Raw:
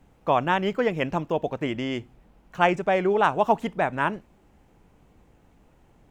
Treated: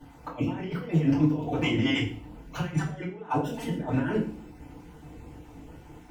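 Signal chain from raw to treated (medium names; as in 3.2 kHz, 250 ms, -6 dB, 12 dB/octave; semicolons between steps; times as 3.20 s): random holes in the spectrogram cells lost 22%; compressor with a negative ratio -32 dBFS, ratio -0.5; FDN reverb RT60 0.41 s, low-frequency decay 1.55×, high-frequency decay 1×, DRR -9 dB; trim -6.5 dB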